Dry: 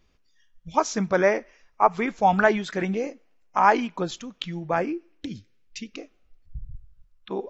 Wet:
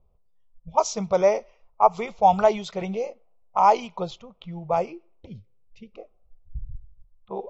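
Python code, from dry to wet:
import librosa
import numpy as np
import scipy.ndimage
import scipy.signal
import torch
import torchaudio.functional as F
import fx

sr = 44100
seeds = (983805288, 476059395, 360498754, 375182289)

y = fx.env_lowpass(x, sr, base_hz=870.0, full_db=-18.0)
y = fx.fixed_phaser(y, sr, hz=690.0, stages=4)
y = y * librosa.db_to_amplitude(3.0)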